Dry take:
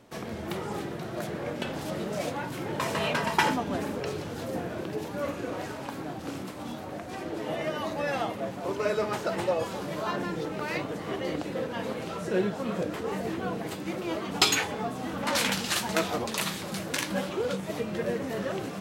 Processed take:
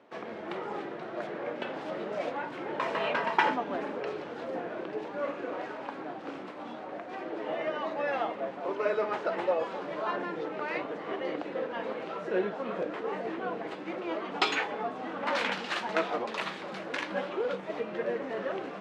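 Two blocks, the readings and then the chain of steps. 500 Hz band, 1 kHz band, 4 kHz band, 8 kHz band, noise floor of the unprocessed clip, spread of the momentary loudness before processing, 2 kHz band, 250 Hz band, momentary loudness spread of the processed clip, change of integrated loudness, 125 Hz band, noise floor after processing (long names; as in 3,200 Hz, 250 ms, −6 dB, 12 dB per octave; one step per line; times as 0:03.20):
−1.0 dB, 0.0 dB, −7.5 dB, below −15 dB, −38 dBFS, 9 LU, −1.5 dB, −5.5 dB, 9 LU, −2.5 dB, −13.5 dB, −42 dBFS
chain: band-pass filter 340–2,500 Hz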